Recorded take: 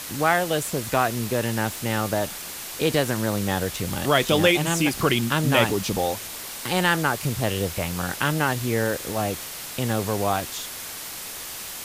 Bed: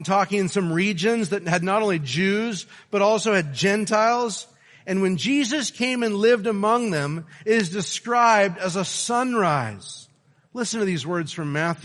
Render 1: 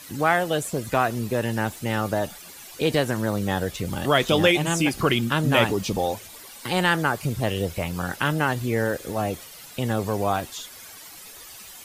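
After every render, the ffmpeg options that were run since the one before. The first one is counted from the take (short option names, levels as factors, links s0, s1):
-af "afftdn=nr=12:nf=-36"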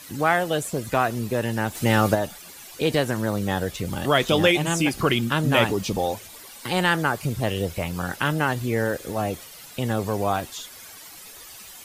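-filter_complex "[0:a]asplit=3[s0][s1][s2];[s0]afade=t=out:st=1.74:d=0.02[s3];[s1]acontrast=72,afade=t=in:st=1.74:d=0.02,afade=t=out:st=2.14:d=0.02[s4];[s2]afade=t=in:st=2.14:d=0.02[s5];[s3][s4][s5]amix=inputs=3:normalize=0"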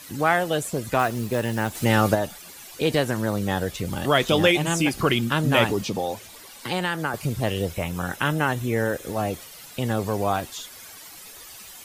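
-filter_complex "[0:a]asettb=1/sr,asplit=3[s0][s1][s2];[s0]atrim=end=0.994[s3];[s1]atrim=start=0.99:end=1.85,asetpts=PTS-STARTPTS,afade=t=in:d=0.004:c=qsin,afade=t=out:st=0.856:d=0.004:c=qsin,acrusher=bits=5:mode=log:mix=0:aa=0.000001[s4];[s2]atrim=start=1.846[s5];[s3][s4]acrossfade=d=0.004:c1=hsin:c2=qsin[s6];[s6][s5]acrossfade=d=0.004:c1=qsin:c2=hsin,asettb=1/sr,asplit=3[s7][s8][s9];[s7]atrim=end=5.814[s10];[s8]atrim=start=5.81:end=7.14,asetpts=PTS-STARTPTS,afade=t=in:d=0.004:c=qsin,afade=t=out:st=1.326:d=0.004:c=qsin,acrossover=split=100|6900[s11][s12][s13];[s11]acompressor=threshold=0.00224:ratio=4[s14];[s12]acompressor=threshold=0.0794:ratio=4[s15];[s13]acompressor=threshold=0.00501:ratio=4[s16];[s14][s15][s16]amix=inputs=3:normalize=0[s17];[s9]atrim=start=7.136[s18];[s10][s17]acrossfade=d=0.004:c1=hsin:c2=qsin[s19];[s19][s18]acrossfade=d=0.004:c1=qsin:c2=hsin,asettb=1/sr,asplit=3[s20][s21][s22];[s20]atrim=end=7.744[s23];[s21]atrim=start=7.74:end=9.05,asetpts=PTS-STARTPTS,afade=t=in:d=0.004:c=qsin,afade=t=out:st=1.306:d=0.004:c=qsin,bandreject=f=4600:w=5.8[s24];[s22]atrim=start=9.046[s25];[s23][s24]acrossfade=d=0.004:c1=hsin:c2=qsin[s26];[s26][s25]acrossfade=d=0.004:c1=qsin:c2=hsin"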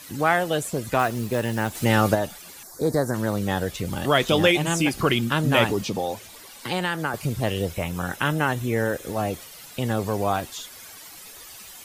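-filter_complex "[0:a]asettb=1/sr,asplit=3[s0][s1][s2];[s0]atrim=end=2.634[s3];[s1]atrim=start=2.63:end=3.14,asetpts=PTS-STARTPTS,afade=t=in:d=0.004:c=qsin,afade=t=out:st=0.506:d=0.004:c=qsin,asuperstop=centerf=2800:order=4:qfactor=0.83[s4];[s2]atrim=start=3.136[s5];[s3][s4]acrossfade=d=0.004:c1=hsin:c2=qsin[s6];[s6][s5]acrossfade=d=0.004:c1=qsin:c2=hsin"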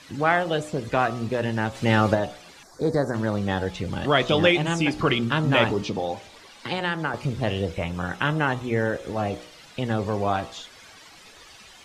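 -af "lowpass=4700,bandreject=f=60.73:t=h:w=4,bandreject=f=121.46:t=h:w=4,bandreject=f=182.19:t=h:w=4,bandreject=f=242.92:t=h:w=4,bandreject=f=303.65:t=h:w=4,bandreject=f=364.38:t=h:w=4,bandreject=f=425.11:t=h:w=4,bandreject=f=485.84:t=h:w=4,bandreject=f=546.57:t=h:w=4,bandreject=f=607.3:t=h:w=4,bandreject=f=668.03:t=h:w=4,bandreject=f=728.76:t=h:w=4,bandreject=f=789.49:t=h:w=4,bandreject=f=850.22:t=h:w=4,bandreject=f=910.95:t=h:w=4,bandreject=f=971.68:t=h:w=4,bandreject=f=1032.41:t=h:w=4,bandreject=f=1093.14:t=h:w=4,bandreject=f=1153.87:t=h:w=4,bandreject=f=1214.6:t=h:w=4,bandreject=f=1275.33:t=h:w=4,bandreject=f=1336.06:t=h:w=4"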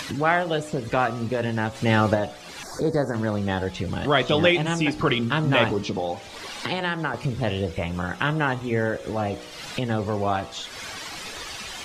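-af "acompressor=mode=upward:threshold=0.0708:ratio=2.5"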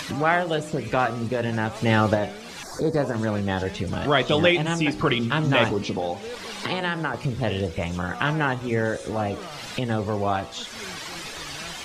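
-filter_complex "[1:a]volume=0.106[s0];[0:a][s0]amix=inputs=2:normalize=0"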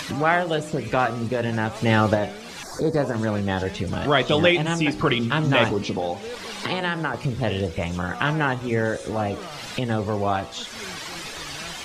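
-af "volume=1.12"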